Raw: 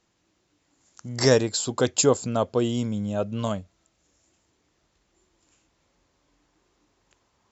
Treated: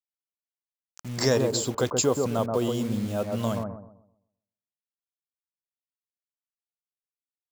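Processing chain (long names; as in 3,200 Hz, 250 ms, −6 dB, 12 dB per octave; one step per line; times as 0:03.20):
noise gate with hold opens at −50 dBFS
in parallel at +2 dB: downward compressor 6 to 1, threshold −25 dBFS, peak gain reduction 12 dB
on the sum: bit reduction 6 bits
bucket-brigade delay 129 ms, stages 1,024, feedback 32%, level −3.5 dB
level −7.5 dB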